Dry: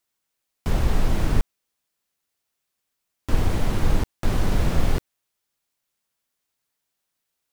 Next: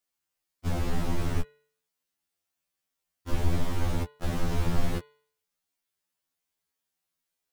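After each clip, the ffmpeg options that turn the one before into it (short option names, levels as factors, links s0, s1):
-af "bandreject=f=146.5:t=h:w=4,bandreject=f=293:t=h:w=4,bandreject=f=439.5:t=h:w=4,bandreject=f=586:t=h:w=4,bandreject=f=732.5:t=h:w=4,bandreject=f=879:t=h:w=4,bandreject=f=1025.5:t=h:w=4,bandreject=f=1172:t=h:w=4,bandreject=f=1318.5:t=h:w=4,bandreject=f=1465:t=h:w=4,bandreject=f=1611.5:t=h:w=4,bandreject=f=1758:t=h:w=4,bandreject=f=1904.5:t=h:w=4,bandreject=f=2051:t=h:w=4,bandreject=f=2197.5:t=h:w=4,bandreject=f=2344:t=h:w=4,bandreject=f=2490.5:t=h:w=4,bandreject=f=2637:t=h:w=4,bandreject=f=2783.5:t=h:w=4,bandreject=f=2930:t=h:w=4,bandreject=f=3076.5:t=h:w=4,bandreject=f=3223:t=h:w=4,bandreject=f=3369.5:t=h:w=4,bandreject=f=3516:t=h:w=4,bandreject=f=3662.5:t=h:w=4,bandreject=f=3809:t=h:w=4,bandreject=f=3955.5:t=h:w=4,bandreject=f=4102:t=h:w=4,bandreject=f=4248.5:t=h:w=4,bandreject=f=4395:t=h:w=4,bandreject=f=4541.5:t=h:w=4,afftfilt=real='re*2*eq(mod(b,4),0)':imag='im*2*eq(mod(b,4),0)':win_size=2048:overlap=0.75,volume=0.708"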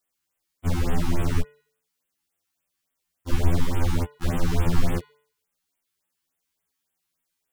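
-af "afftfilt=real='re*(1-between(b*sr/1024,500*pow(5300/500,0.5+0.5*sin(2*PI*3.5*pts/sr))/1.41,500*pow(5300/500,0.5+0.5*sin(2*PI*3.5*pts/sr))*1.41))':imag='im*(1-between(b*sr/1024,500*pow(5300/500,0.5+0.5*sin(2*PI*3.5*pts/sr))/1.41,500*pow(5300/500,0.5+0.5*sin(2*PI*3.5*pts/sr))*1.41))':win_size=1024:overlap=0.75,volume=1.78"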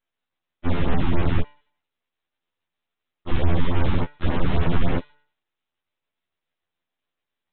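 -af "alimiter=limit=0.224:level=0:latency=1:release=21,aresample=8000,aeval=exprs='abs(val(0))':c=same,aresample=44100,volume=1.68"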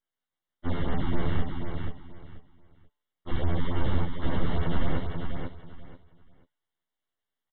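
-af "asuperstop=centerf=2500:order=20:qfactor=5.7,aecho=1:1:485|970|1455:0.531|0.117|0.0257,volume=0.473"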